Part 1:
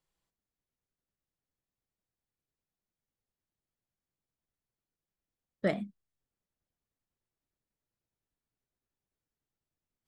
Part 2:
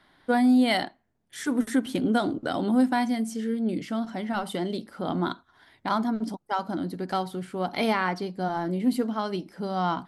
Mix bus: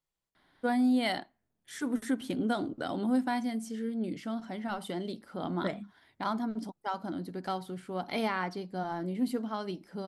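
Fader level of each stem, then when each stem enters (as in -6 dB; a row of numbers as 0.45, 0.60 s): -5.0, -6.5 dB; 0.00, 0.35 s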